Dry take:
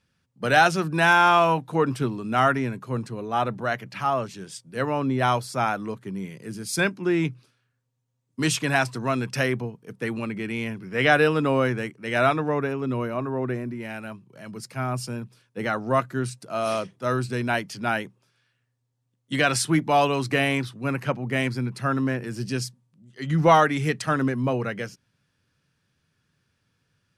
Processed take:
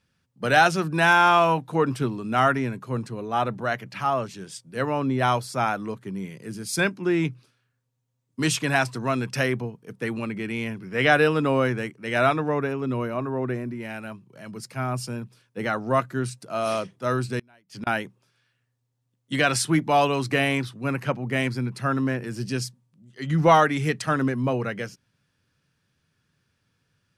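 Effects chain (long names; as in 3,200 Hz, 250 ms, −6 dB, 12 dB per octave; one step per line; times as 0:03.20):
0:17.39–0:17.87: gate with flip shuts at −22 dBFS, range −32 dB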